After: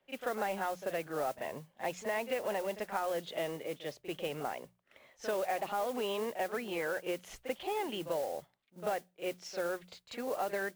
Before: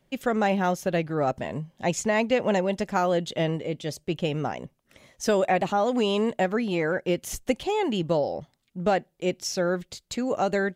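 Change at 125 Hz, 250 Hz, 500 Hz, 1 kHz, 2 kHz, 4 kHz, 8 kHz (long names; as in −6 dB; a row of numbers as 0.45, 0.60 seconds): −20.0, −16.0, −10.0, −9.0, −8.5, −10.0, −12.0 decibels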